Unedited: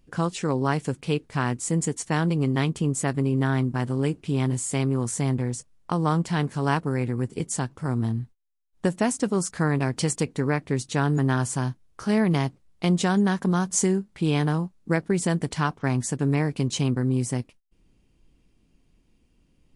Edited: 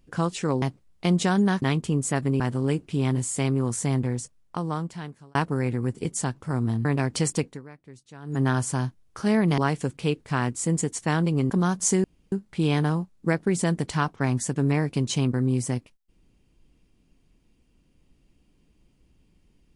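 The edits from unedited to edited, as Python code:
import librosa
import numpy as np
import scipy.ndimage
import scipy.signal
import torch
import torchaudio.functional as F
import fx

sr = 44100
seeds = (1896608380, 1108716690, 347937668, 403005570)

y = fx.edit(x, sr, fx.swap(start_s=0.62, length_s=1.92, other_s=12.41, other_length_s=1.0),
    fx.cut(start_s=3.32, length_s=0.43),
    fx.fade_out_span(start_s=5.46, length_s=1.24),
    fx.cut(start_s=8.2, length_s=1.48),
    fx.fade_down_up(start_s=10.27, length_s=0.97, db=-21.0, fade_s=0.22, curve='qua'),
    fx.insert_room_tone(at_s=13.95, length_s=0.28), tone=tone)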